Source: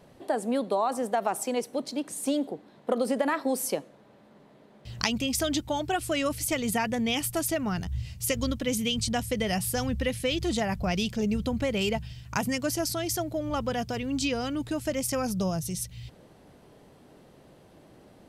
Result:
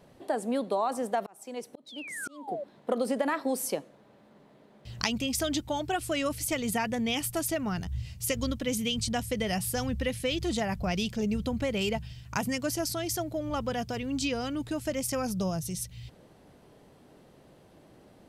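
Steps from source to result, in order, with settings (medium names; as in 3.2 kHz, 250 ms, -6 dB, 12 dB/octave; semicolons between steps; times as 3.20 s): 1.86–2.64 s: painted sound fall 540–4000 Hz -33 dBFS; 1.15–2.48 s: slow attack 683 ms; trim -2 dB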